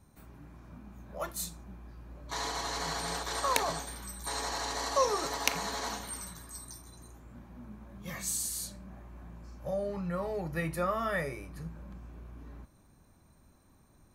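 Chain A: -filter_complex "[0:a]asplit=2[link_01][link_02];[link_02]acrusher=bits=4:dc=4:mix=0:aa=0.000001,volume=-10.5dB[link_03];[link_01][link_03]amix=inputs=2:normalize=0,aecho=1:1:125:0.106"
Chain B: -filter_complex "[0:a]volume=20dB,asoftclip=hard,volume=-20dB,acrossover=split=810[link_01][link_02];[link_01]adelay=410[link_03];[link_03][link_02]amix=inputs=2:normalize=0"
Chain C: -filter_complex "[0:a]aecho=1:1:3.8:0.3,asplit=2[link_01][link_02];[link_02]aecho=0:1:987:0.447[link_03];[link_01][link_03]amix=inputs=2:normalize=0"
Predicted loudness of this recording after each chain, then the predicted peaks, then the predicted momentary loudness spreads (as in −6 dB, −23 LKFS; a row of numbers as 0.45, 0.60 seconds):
−33.0, −35.5, −33.5 LKFS; −4.5, −13.0, −7.0 dBFS; 21, 19, 19 LU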